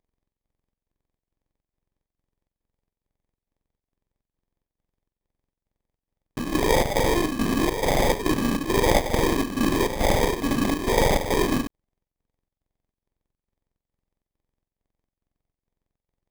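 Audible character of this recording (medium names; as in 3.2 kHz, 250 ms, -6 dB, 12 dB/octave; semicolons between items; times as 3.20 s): a buzz of ramps at a fixed pitch in blocks of 32 samples; chopped level 2.3 Hz, depth 60%, duty 70%; aliases and images of a low sample rate 1.4 kHz, jitter 0%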